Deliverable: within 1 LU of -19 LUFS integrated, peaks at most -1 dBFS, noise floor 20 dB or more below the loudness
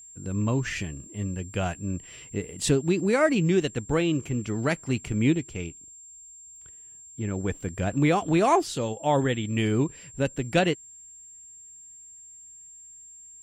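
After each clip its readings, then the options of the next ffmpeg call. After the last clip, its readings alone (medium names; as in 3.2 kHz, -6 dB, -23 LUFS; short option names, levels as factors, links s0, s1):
steady tone 7.4 kHz; tone level -45 dBFS; loudness -26.5 LUFS; peak level -9.0 dBFS; loudness target -19.0 LUFS
-> -af "bandreject=f=7400:w=30"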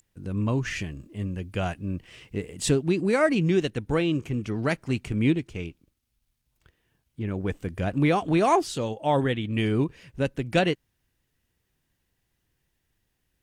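steady tone not found; loudness -26.5 LUFS; peak level -9.0 dBFS; loudness target -19.0 LUFS
-> -af "volume=2.37"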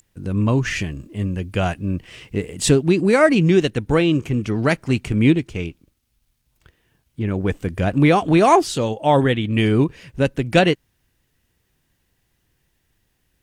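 loudness -19.0 LUFS; peak level -1.5 dBFS; noise floor -69 dBFS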